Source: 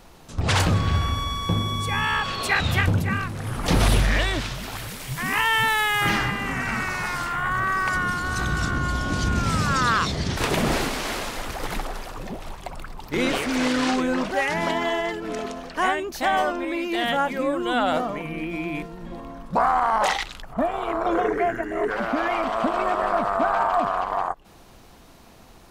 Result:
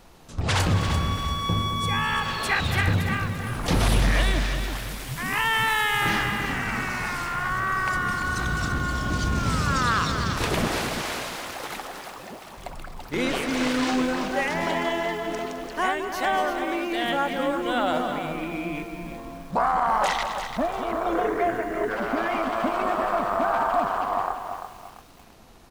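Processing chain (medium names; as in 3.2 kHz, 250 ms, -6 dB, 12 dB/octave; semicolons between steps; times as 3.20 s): 10.67–12.57 s: high-pass 400 Hz 6 dB/octave; echo from a far wall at 36 m, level -10 dB; bit-crushed delay 341 ms, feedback 35%, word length 7-bit, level -8 dB; trim -2.5 dB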